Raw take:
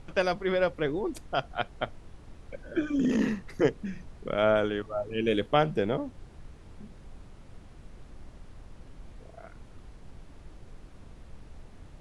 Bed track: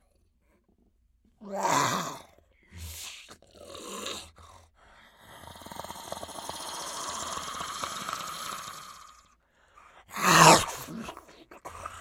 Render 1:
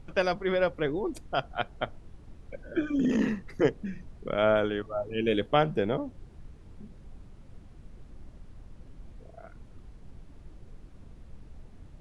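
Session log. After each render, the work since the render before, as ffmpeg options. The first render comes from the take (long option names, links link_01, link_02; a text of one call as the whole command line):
ffmpeg -i in.wav -af "afftdn=noise_reduction=6:noise_floor=-50" out.wav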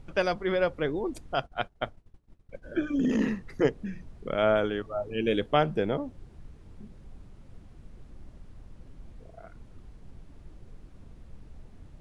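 ffmpeg -i in.wav -filter_complex "[0:a]asplit=3[link_01][link_02][link_03];[link_01]afade=type=out:start_time=1.45:duration=0.02[link_04];[link_02]agate=range=-33dB:threshold=-37dB:ratio=3:release=100:detection=peak,afade=type=in:start_time=1.45:duration=0.02,afade=type=out:start_time=2.62:duration=0.02[link_05];[link_03]afade=type=in:start_time=2.62:duration=0.02[link_06];[link_04][link_05][link_06]amix=inputs=3:normalize=0" out.wav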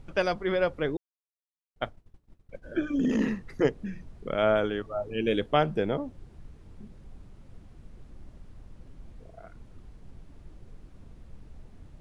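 ffmpeg -i in.wav -filter_complex "[0:a]asplit=3[link_01][link_02][link_03];[link_01]atrim=end=0.97,asetpts=PTS-STARTPTS,afade=type=out:start_time=0.966:duration=0.004:curve=hsin[link_04];[link_02]atrim=start=0.97:end=1.76,asetpts=PTS-STARTPTS,volume=0[link_05];[link_03]atrim=start=1.76,asetpts=PTS-STARTPTS,afade=type=in:duration=0.004:curve=hsin[link_06];[link_04][link_05][link_06]concat=n=3:v=0:a=1" out.wav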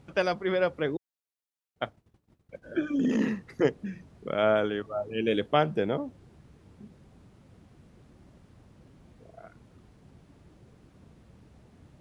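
ffmpeg -i in.wav -af "highpass=97" out.wav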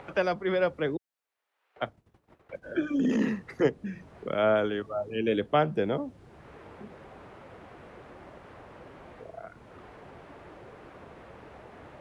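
ffmpeg -i in.wav -filter_complex "[0:a]acrossover=split=260|370|2600[link_01][link_02][link_03][link_04];[link_03]acompressor=mode=upward:threshold=-34dB:ratio=2.5[link_05];[link_04]alimiter=level_in=10.5dB:limit=-24dB:level=0:latency=1:release=347,volume=-10.5dB[link_06];[link_01][link_02][link_05][link_06]amix=inputs=4:normalize=0" out.wav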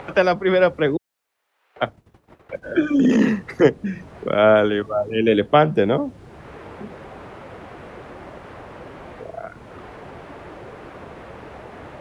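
ffmpeg -i in.wav -af "volume=10dB,alimiter=limit=-2dB:level=0:latency=1" out.wav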